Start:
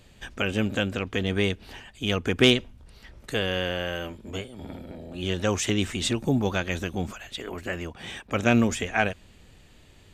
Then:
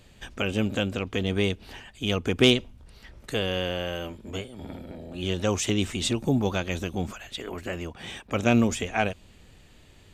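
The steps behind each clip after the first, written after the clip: dynamic EQ 1700 Hz, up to -6 dB, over -44 dBFS, Q 2.3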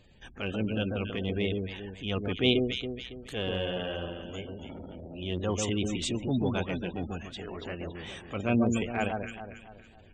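echo with dull and thin repeats by turns 0.139 s, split 1400 Hz, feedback 62%, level -4 dB; spectral gate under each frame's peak -25 dB strong; transient shaper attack -6 dB, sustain -2 dB; gain -4 dB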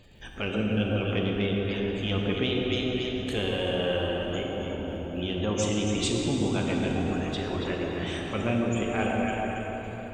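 compressor, threshold -30 dBFS, peak gain reduction 11 dB; crackle 71/s -59 dBFS; reverb RT60 5.0 s, pre-delay 8 ms, DRR -0.5 dB; gain +4.5 dB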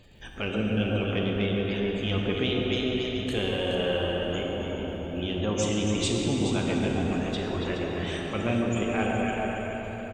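echo 0.422 s -9.5 dB

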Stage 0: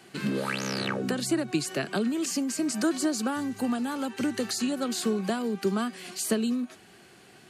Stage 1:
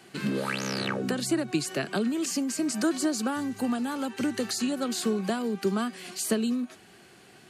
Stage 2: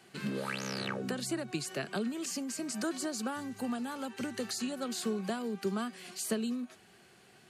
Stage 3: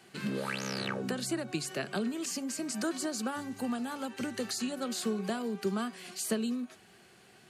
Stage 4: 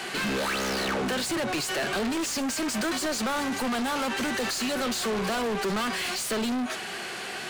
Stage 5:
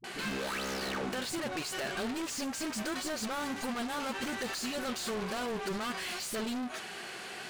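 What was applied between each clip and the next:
nothing audible
bell 300 Hz -6 dB 0.29 oct; gain -6 dB
de-hum 140 Hz, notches 11; gain +1.5 dB
overdrive pedal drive 38 dB, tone 4800 Hz, clips at -17.5 dBFS; gain -3.5 dB
dispersion highs, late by 42 ms, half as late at 320 Hz; gain -7.5 dB

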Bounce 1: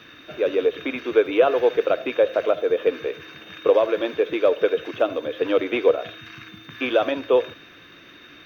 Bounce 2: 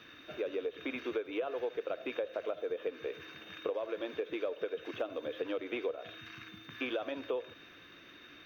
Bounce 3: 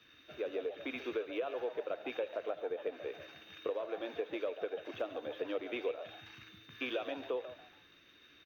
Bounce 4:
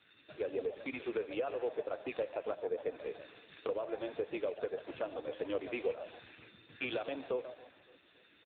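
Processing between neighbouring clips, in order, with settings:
bell 140 Hz -2.5 dB; compressor 6:1, threshold -25 dBFS, peak gain reduction 13.5 dB; gain -8 dB
frequency-shifting echo 0.142 s, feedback 32%, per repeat +120 Hz, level -11 dB; three-band expander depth 40%; gain -2 dB
feedback echo 0.28 s, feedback 57%, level -23 dB; gain +2.5 dB; AMR-NB 5.9 kbps 8000 Hz

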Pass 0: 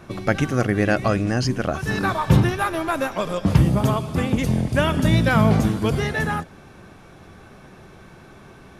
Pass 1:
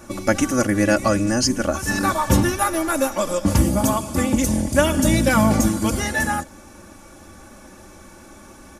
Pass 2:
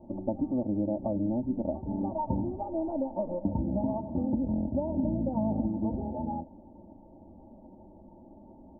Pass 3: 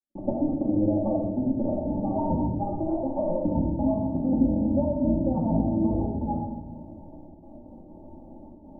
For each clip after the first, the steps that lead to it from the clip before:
resonant high shelf 5000 Hz +10 dB, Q 1.5; comb 3.5 ms, depth 78%
compressor, threshold -19 dBFS, peak gain reduction 8.5 dB; rippled Chebyshev low-pass 940 Hz, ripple 6 dB; gain -4 dB
step gate "..xx.xx.xxxxxxxx" 198 bpm -60 dB; shoebox room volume 670 m³, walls mixed, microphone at 2.3 m

